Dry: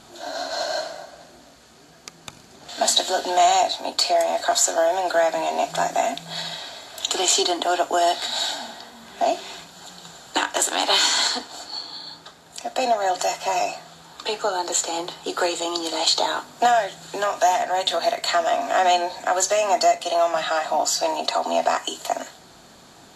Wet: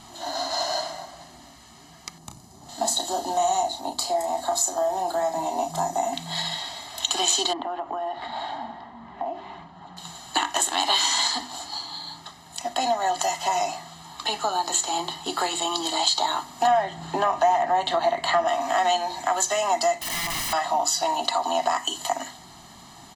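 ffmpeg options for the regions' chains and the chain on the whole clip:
ffmpeg -i in.wav -filter_complex "[0:a]asettb=1/sr,asplit=3[link_01][link_02][link_03];[link_01]atrim=end=2.184[link_04];[link_02]atrim=start=2.18:end=6.13,asetpts=PTS-STARTPTS,afade=type=in:duration=0.004:curve=qsin,afade=type=out:start_time=3.946:duration=0.004:curve=qsin,equalizer=frequency=2400:width_type=o:width=2.1:gain=-13.5,asplit=2[link_05][link_06];[link_06]adelay=32,volume=-7.5dB[link_07];[link_05][link_07]amix=inputs=2:normalize=0,atrim=end_sample=174195[link_08];[link_03]atrim=start=6.126[link_09];[link_04][link_08]acrossfade=duration=0.004:curve1=hsin:curve2=qsin[link_10];[link_10][link_09]acrossfade=duration=0.004:curve1=qsin:curve2=hsin,asettb=1/sr,asplit=3[link_11][link_12][link_13];[link_11]atrim=end=7.534[link_14];[link_12]atrim=start=7.53:end=9.97,asetpts=PTS-STARTPTS,afade=type=in:duration=0.004:curve=qsin,afade=type=out:start_time=2.436:duration=0.004:curve=qsin,lowpass=1400,acompressor=threshold=-27dB:ratio=5:attack=3.2:release=140:knee=1:detection=peak[link_15];[link_13]atrim=start=9.966[link_16];[link_14][link_15]acrossfade=duration=0.004:curve1=hsin:curve2=qsin[link_17];[link_17][link_16]acrossfade=duration=0.004:curve1=qsin:curve2=hsin,asettb=1/sr,asplit=3[link_18][link_19][link_20];[link_18]atrim=end=16.674[link_21];[link_19]atrim=start=16.67:end=18.48,asetpts=PTS-STARTPTS,afade=type=in:duration=0.004:curve=qsin,afade=type=out:start_time=1.806:duration=0.004:curve=qsin,lowpass=frequency=1200:poles=1,acontrast=75[link_22];[link_20]atrim=start=18.476[link_23];[link_21][link_22]acrossfade=duration=0.004:curve1=hsin:curve2=qsin[link_24];[link_24][link_23]acrossfade=duration=0.004:curve1=qsin:curve2=hsin,asettb=1/sr,asplit=3[link_25][link_26][link_27];[link_25]atrim=end=20.014[link_28];[link_26]atrim=start=20.01:end=20.53,asetpts=PTS-STARTPTS,afade=type=in:duration=0.004:curve=qsin,afade=type=out:start_time=0.516:duration=0.004:curve=qsin,equalizer=frequency=2600:width=0.42:gain=3,acompressor=threshold=-22dB:ratio=8:attack=3.2:release=140:knee=1:detection=peak,aeval=exprs='(mod(18.8*val(0)+1,2)-1)/18.8':channel_layout=same[link_29];[link_27]atrim=start=20.526[link_30];[link_28][link_29]acrossfade=duration=0.004:curve1=hsin:curve2=qsin[link_31];[link_31][link_30]acrossfade=duration=0.004:curve1=qsin:curve2=hsin,bandreject=frequency=50:width_type=h:width=6,bandreject=frequency=100:width_type=h:width=6,bandreject=frequency=150:width_type=h:width=6,bandreject=frequency=200:width_type=h:width=6,bandreject=frequency=250:width_type=h:width=6,bandreject=frequency=300:width_type=h:width=6,bandreject=frequency=350:width_type=h:width=6,aecho=1:1:1:0.79,acompressor=threshold=-22dB:ratio=2" out.wav

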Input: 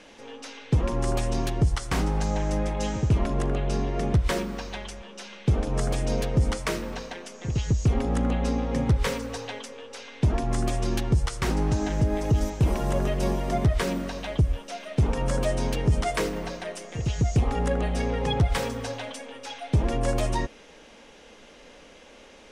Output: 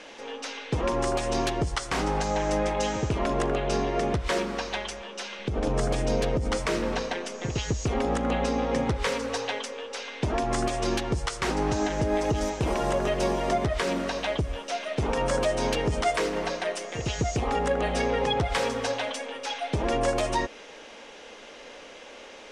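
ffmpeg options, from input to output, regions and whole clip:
ffmpeg -i in.wav -filter_complex "[0:a]asettb=1/sr,asplit=3[link_01][link_02][link_03];[link_01]atrim=end=5.394[link_04];[link_02]atrim=start=5.39:end=7.47,asetpts=PTS-STARTPTS,afade=type=in:duration=0.004:curve=qsin,afade=type=out:start_time=2.076:duration=0.004:curve=qsin,lowshelf=frequency=330:gain=8.5,acompressor=threshold=-17dB:ratio=5:attack=3.2:release=140:knee=1:detection=peak[link_05];[link_03]atrim=start=7.466[link_06];[link_04][link_05]acrossfade=duration=0.004:curve1=hsin:curve2=qsin[link_07];[link_07][link_06]acrossfade=duration=0.004:curve1=qsin:curve2=hsin,lowpass=8600,bass=frequency=250:gain=-12,treble=frequency=4000:gain=-1,alimiter=limit=-21.5dB:level=0:latency=1:release=184,volume=6dB" out.wav

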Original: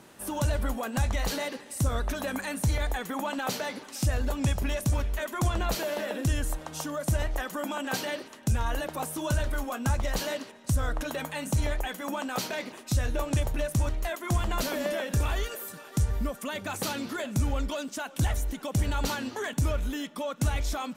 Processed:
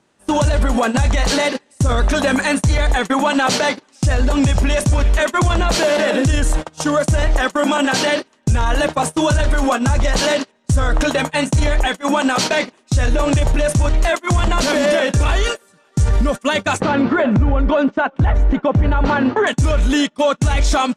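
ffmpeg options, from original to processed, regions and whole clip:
ffmpeg -i in.wav -filter_complex "[0:a]asettb=1/sr,asplit=3[link_01][link_02][link_03];[link_01]atrim=end=16.804[link_04];[link_02]atrim=start=16.8:end=19.47,asetpts=PTS-STARTPTS,afade=type=in:duration=0.004:curve=qsin,afade=type=out:start_time=2.666:duration=0.004:curve=qsin,lowpass=1600,acompressor=mode=upward:threshold=-28dB:ratio=2.5:attack=3.2:release=140:knee=2.83:detection=peak[link_05];[link_03]atrim=start=19.466[link_06];[link_04][link_05]acrossfade=duration=0.004:curve1=hsin:curve2=qsin[link_07];[link_07][link_06]acrossfade=duration=0.004:curve1=qsin:curve2=hsin,lowpass=frequency=9000:width=0.5412,lowpass=frequency=9000:width=1.3066,agate=range=-29dB:threshold=-34dB:ratio=16:detection=peak,alimiter=level_in=28dB:limit=-1dB:release=50:level=0:latency=1,volume=-7dB" out.wav

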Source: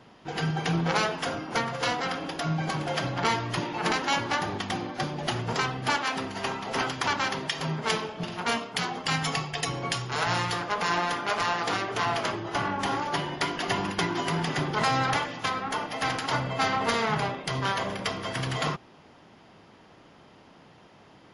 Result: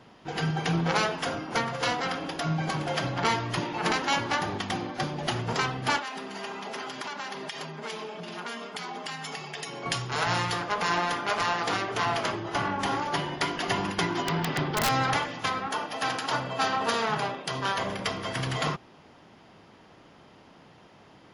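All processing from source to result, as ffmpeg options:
ffmpeg -i in.wav -filter_complex "[0:a]asettb=1/sr,asplit=3[link_01][link_02][link_03];[link_01]atrim=end=5.994[link_04];[link_02]atrim=start=5.99:end=9.86,asetpts=PTS-STARTPTS,afade=type=in:duration=0.004:curve=qsin,afade=type=out:start_time=3.866:duration=0.004:curve=qsin,aecho=1:1:4.9:0.49,atrim=end_sample=170667,acompressor=threshold=-32dB:ratio=6:attack=3.2:release=140:knee=1:detection=peak,highpass=220[link_05];[link_03]atrim=start=9.856[link_06];[link_04][link_05]acrossfade=duration=0.004:curve1=hsin:curve2=qsin[link_07];[link_07][link_06]acrossfade=duration=0.004:curve1=qsin:curve2=hsin,asettb=1/sr,asplit=3[link_08][link_09][link_10];[link_08]atrim=end=14.224[link_11];[link_09]atrim=start=14.22:end=14.89,asetpts=PTS-STARTPTS,afade=type=in:duration=0.004:curve=qsin,afade=type=out:start_time=0.666:duration=0.004:curve=qsin,lowpass=frequency=4900:width=0.5412,lowpass=frequency=4900:width=1.3066,aeval=exprs='(mod(7.5*val(0)+1,2)-1)/7.5':channel_layout=same[link_12];[link_10]atrim=start=14.886[link_13];[link_11][link_12]acrossfade=duration=0.004:curve1=hsin:curve2=qsin[link_14];[link_14][link_13]acrossfade=duration=0.004:curve1=qsin:curve2=hsin,asettb=1/sr,asplit=3[link_15][link_16][link_17];[link_15]atrim=end=15.674[link_18];[link_16]atrim=start=15.67:end=17.78,asetpts=PTS-STARTPTS,afade=type=in:duration=0.004:curve=qsin,afade=type=out:start_time=2.106:duration=0.004:curve=qsin,highpass=frequency=230:poles=1,bandreject=frequency=2100:width=11[link_19];[link_17]atrim=start=17.776[link_20];[link_18][link_19]acrossfade=duration=0.004:curve1=hsin:curve2=qsin[link_21];[link_21][link_20]acrossfade=duration=0.004:curve1=qsin:curve2=hsin" out.wav

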